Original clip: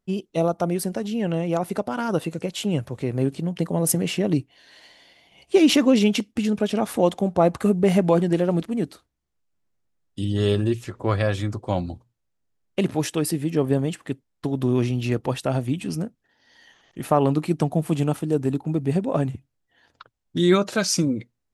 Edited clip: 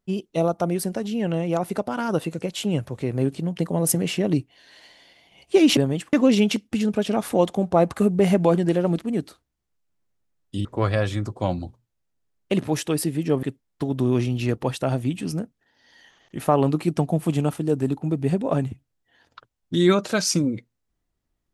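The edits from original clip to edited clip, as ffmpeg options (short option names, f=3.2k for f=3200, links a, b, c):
-filter_complex "[0:a]asplit=5[a][b][c][d][e];[a]atrim=end=5.772[f];[b]atrim=start=13.698:end=14.062[g];[c]atrim=start=5.768:end=10.292[h];[d]atrim=start=10.918:end=13.702[i];[e]atrim=start=14.058[j];[f][g]acrossfade=d=0.004:c1=hsin:c2=hsin[k];[k][h]acrossfade=d=0.004:c1=hsin:c2=hsin[l];[l][i]acrossfade=d=0.004:c1=hsin:c2=hsin[m];[m][j]acrossfade=d=0.004:c1=hsin:c2=hsin"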